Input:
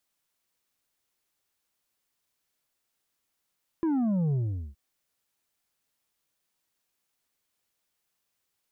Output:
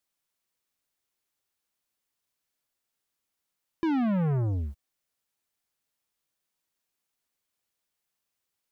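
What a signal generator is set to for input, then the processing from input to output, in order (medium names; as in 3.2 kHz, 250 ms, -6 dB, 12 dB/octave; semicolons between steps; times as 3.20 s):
sub drop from 340 Hz, over 0.92 s, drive 5.5 dB, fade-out 0.42 s, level -24 dB
waveshaping leveller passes 2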